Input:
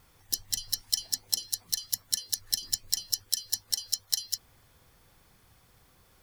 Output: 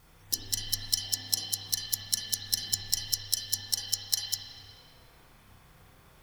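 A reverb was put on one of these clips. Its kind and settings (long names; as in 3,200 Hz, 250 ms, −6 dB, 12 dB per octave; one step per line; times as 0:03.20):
spring reverb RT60 1.7 s, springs 31/50 ms, chirp 70 ms, DRR −4.5 dB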